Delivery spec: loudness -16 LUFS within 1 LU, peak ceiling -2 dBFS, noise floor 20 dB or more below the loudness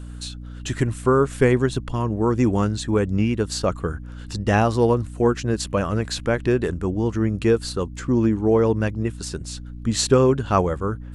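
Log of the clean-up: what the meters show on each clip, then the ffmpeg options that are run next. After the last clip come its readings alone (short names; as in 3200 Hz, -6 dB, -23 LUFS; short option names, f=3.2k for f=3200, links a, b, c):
hum 60 Hz; harmonics up to 300 Hz; hum level -34 dBFS; loudness -21.5 LUFS; peak -3.0 dBFS; loudness target -16.0 LUFS
-> -af "bandreject=f=60:t=h:w=4,bandreject=f=120:t=h:w=4,bandreject=f=180:t=h:w=4,bandreject=f=240:t=h:w=4,bandreject=f=300:t=h:w=4"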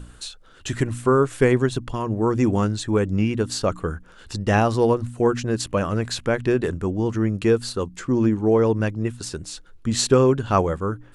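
hum none; loudness -22.0 LUFS; peak -4.0 dBFS; loudness target -16.0 LUFS
-> -af "volume=6dB,alimiter=limit=-2dB:level=0:latency=1"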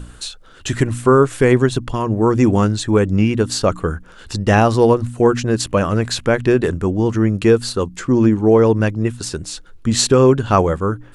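loudness -16.0 LUFS; peak -2.0 dBFS; noise floor -42 dBFS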